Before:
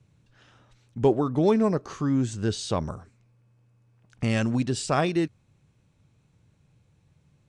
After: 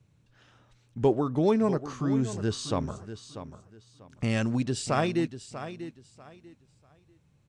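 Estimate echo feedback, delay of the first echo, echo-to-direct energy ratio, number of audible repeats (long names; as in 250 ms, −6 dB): 24%, 642 ms, −11.5 dB, 2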